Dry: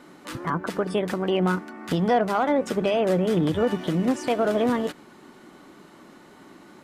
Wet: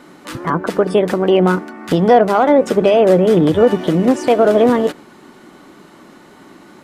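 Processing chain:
dynamic equaliser 470 Hz, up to +6 dB, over −35 dBFS, Q 0.82
level +6.5 dB

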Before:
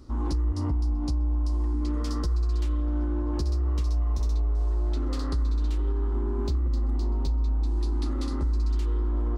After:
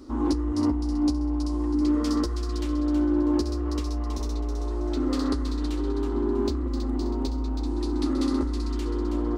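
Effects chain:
low shelf with overshoot 210 Hz −8.5 dB, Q 3
delay with a high-pass on its return 323 ms, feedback 32%, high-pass 1,600 Hz, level −7 dB
level +4.5 dB

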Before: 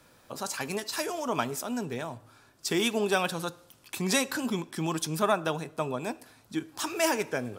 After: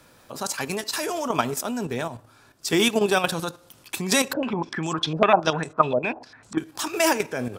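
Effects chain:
output level in coarse steps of 9 dB
0:04.33–0:06.58: low-pass on a step sequencer 10 Hz 590–7,500 Hz
level +8.5 dB

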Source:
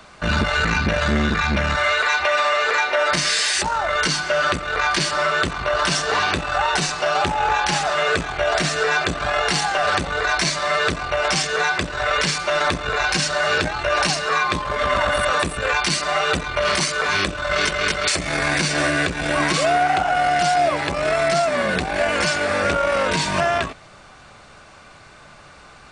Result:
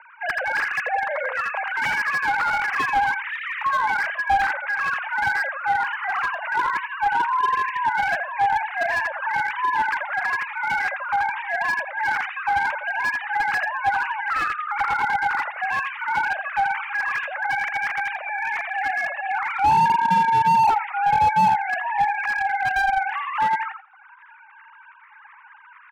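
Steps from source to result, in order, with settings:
three sine waves on the formant tracks
reverb reduction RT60 0.67 s
in parallel at +3 dB: downward compressor 5 to 1, threshold −32 dBFS, peak gain reduction 21.5 dB
on the sum: single-sideband voice off tune +190 Hz 320–2,300 Hz
on a send: repeating echo 84 ms, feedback 19%, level −6 dB
on the sum: slew-rate limiting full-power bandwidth 230 Hz
level −3 dB

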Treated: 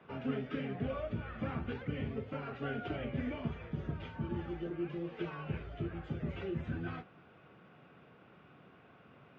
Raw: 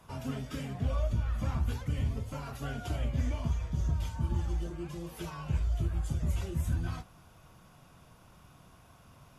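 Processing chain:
loudspeaker in its box 200–2,700 Hz, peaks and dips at 420 Hz +5 dB, 650 Hz −4 dB, 990 Hz −10 dB
level +3 dB

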